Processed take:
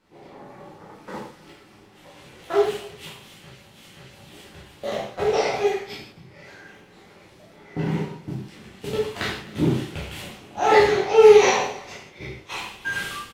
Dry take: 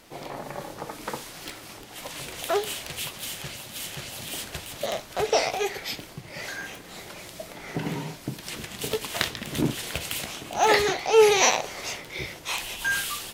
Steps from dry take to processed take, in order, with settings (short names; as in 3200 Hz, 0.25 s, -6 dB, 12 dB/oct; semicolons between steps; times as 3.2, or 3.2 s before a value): gate -31 dBFS, range -10 dB; LPF 2300 Hz 6 dB/oct; bell 210 Hz +4 dB 2.4 oct; notch 640 Hz, Q 12; echo 0.257 s -22 dB; reverb, pre-delay 9 ms, DRR -6.5 dB; gain -4.5 dB